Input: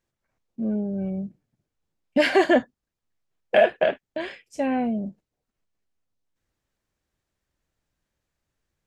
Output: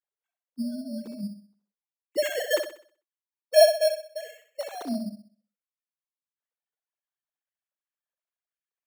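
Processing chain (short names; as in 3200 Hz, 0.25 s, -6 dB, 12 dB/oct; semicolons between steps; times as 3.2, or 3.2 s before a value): sine-wave speech; flutter echo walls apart 10.9 m, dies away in 0.46 s; sample-and-hold 9×; gain -3.5 dB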